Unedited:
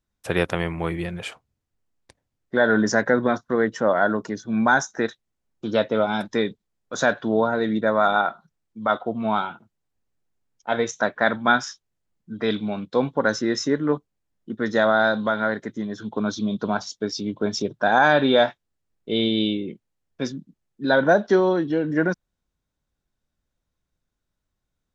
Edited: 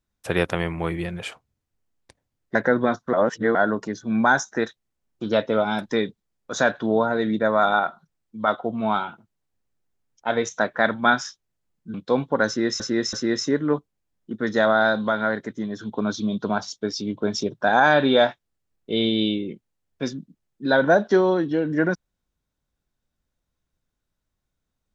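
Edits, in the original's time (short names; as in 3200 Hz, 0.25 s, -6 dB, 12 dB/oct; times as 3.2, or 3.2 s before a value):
2.55–2.97 cut
3.55–3.97 reverse
12.36–12.79 cut
13.32–13.65 loop, 3 plays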